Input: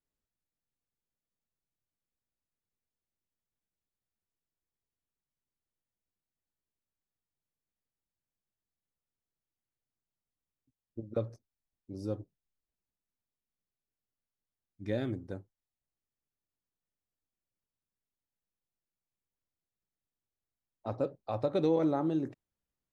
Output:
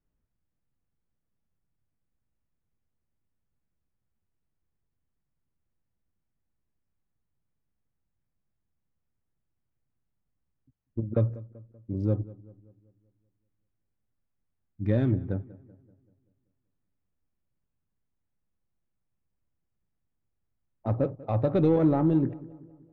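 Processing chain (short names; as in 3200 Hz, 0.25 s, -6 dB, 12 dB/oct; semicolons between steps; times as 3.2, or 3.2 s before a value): Wiener smoothing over 9 samples; in parallel at -4 dB: soft clip -31 dBFS, distortion -9 dB; on the sum: tone controls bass +10 dB, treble -14 dB; darkening echo 0.192 s, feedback 50%, low-pass 2100 Hz, level -19.5 dB; gain +1 dB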